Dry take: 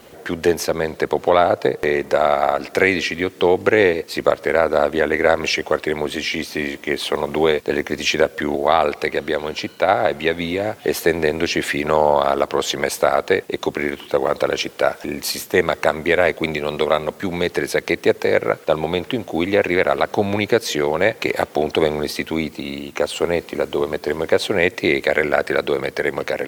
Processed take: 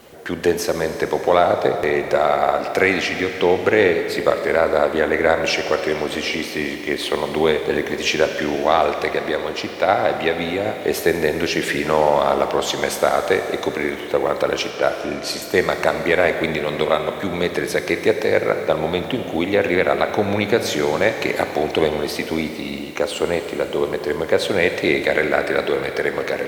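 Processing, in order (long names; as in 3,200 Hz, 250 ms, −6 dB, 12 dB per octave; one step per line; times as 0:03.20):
0:14.70–0:15.42: low-pass that shuts in the quiet parts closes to 1,700 Hz, open at −17 dBFS
four-comb reverb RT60 3.2 s, combs from 30 ms, DRR 6.5 dB
level −1 dB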